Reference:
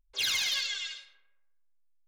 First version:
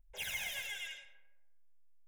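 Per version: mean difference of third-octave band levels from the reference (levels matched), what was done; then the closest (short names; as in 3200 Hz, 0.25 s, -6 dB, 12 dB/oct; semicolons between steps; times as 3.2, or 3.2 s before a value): 7.0 dB: tilt shelf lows +4 dB; soft clip -37 dBFS, distortion -10 dB; fixed phaser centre 1200 Hz, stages 6; gain +3.5 dB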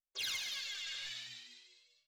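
5.5 dB: gate -52 dBFS, range -42 dB; reverse; compressor, threshold -44 dBFS, peak gain reduction 15 dB; reverse; frequency-shifting echo 0.199 s, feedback 47%, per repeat +120 Hz, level -9 dB; limiter -44.5 dBFS, peak gain reduction 10.5 dB; gain +10 dB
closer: second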